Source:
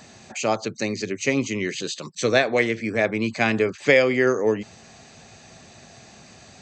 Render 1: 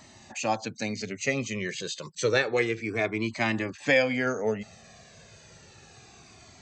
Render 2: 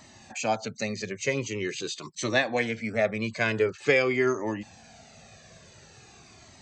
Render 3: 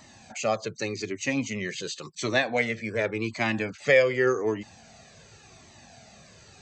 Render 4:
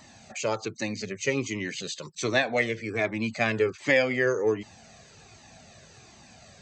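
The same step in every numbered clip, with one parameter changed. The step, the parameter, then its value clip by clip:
flanger whose copies keep moving one way, speed: 0.3, 0.46, 0.88, 1.3 Hertz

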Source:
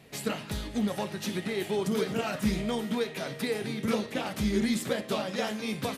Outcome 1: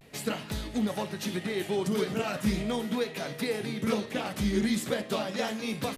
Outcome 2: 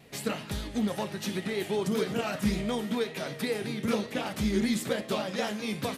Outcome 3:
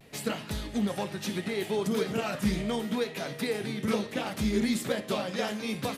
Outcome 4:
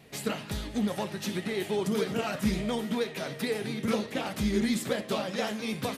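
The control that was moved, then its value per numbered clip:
pitch vibrato, speed: 0.4, 5.2, 0.71, 13 Hertz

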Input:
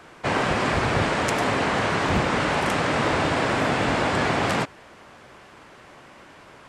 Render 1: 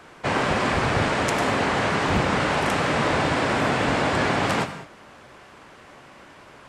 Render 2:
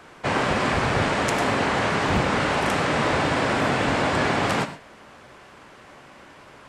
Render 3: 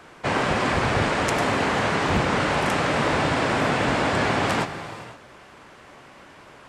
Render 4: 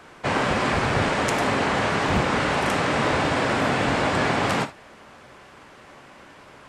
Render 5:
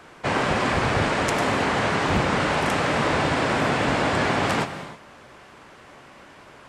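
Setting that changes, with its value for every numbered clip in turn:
reverb whose tail is shaped and stops, gate: 230, 150, 540, 90, 350 milliseconds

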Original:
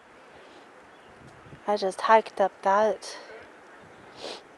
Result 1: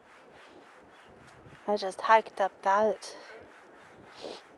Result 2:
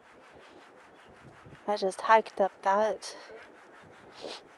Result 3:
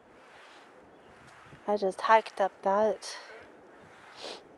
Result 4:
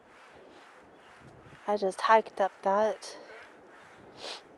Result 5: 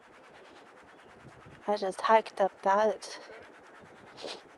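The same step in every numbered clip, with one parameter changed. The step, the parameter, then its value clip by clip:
two-band tremolo in antiphase, speed: 3.5, 5.4, 1.1, 2.2, 9.4 Hertz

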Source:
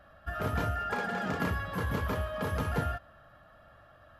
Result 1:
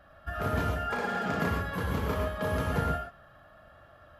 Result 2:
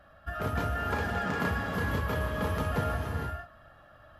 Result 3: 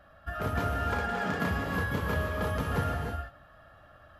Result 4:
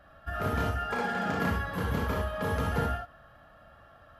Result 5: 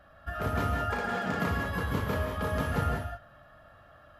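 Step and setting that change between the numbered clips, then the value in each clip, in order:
reverb whose tail is shaped and stops, gate: 140, 500, 340, 90, 220 milliseconds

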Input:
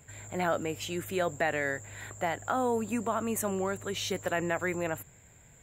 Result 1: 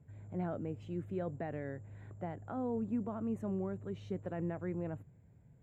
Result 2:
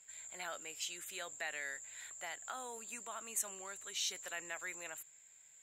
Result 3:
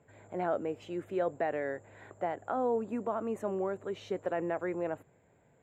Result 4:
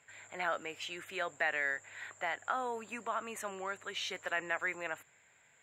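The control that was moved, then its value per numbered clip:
resonant band-pass, frequency: 140, 6,200, 460, 2,000 Hertz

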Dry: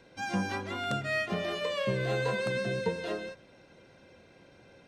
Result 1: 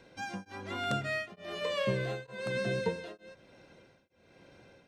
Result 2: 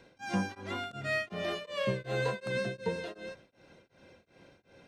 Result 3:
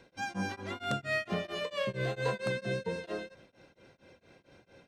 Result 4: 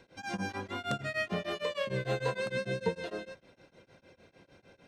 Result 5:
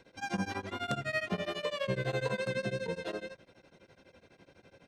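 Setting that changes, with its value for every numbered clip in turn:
tremolo along a rectified sine, nulls at: 1.1, 2.7, 4.4, 6.6, 12 Hertz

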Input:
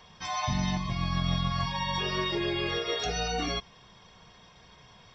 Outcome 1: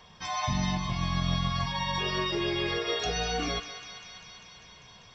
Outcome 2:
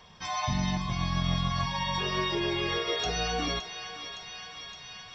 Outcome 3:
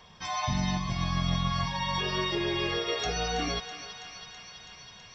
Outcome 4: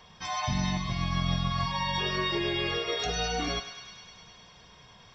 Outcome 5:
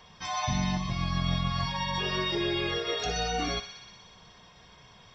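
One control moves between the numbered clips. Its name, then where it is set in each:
feedback echo with a high-pass in the loop, delay time: 198, 565, 327, 102, 61 milliseconds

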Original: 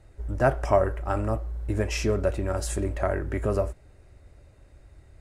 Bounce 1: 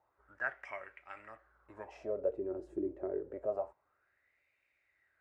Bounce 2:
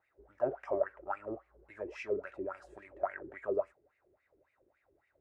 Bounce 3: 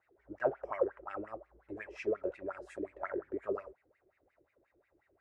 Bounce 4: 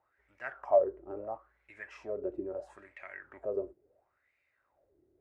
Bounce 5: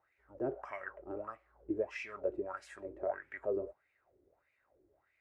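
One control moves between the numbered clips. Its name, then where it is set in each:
LFO wah, speed: 0.27, 3.6, 5.6, 0.74, 1.6 Hertz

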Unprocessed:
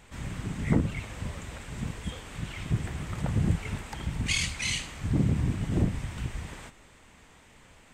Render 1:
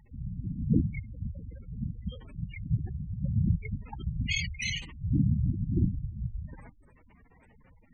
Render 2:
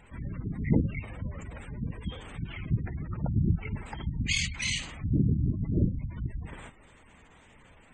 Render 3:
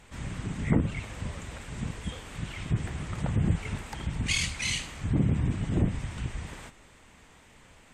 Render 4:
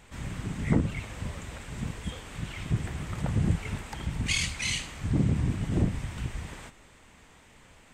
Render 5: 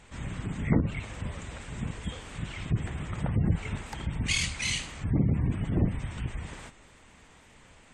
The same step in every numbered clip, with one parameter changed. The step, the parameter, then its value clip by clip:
gate on every frequency bin, under each frame's peak: −10, −20, −45, −60, −35 decibels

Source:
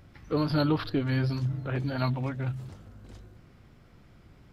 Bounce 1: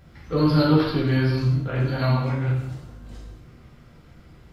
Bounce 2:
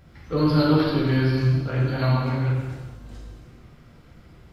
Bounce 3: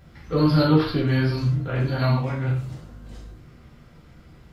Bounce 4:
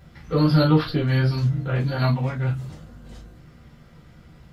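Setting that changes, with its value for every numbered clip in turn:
reverb whose tail is shaped and stops, gate: 280, 490, 180, 80 milliseconds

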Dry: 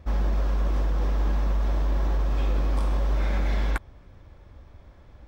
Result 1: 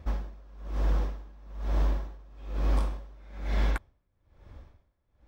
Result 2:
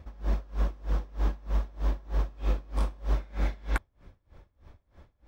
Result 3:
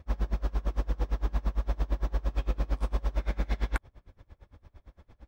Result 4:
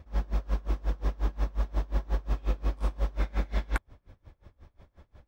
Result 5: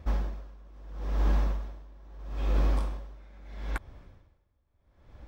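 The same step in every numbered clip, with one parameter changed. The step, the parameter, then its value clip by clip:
tremolo with a sine in dB, speed: 1.1, 3.2, 8.8, 5.6, 0.76 Hertz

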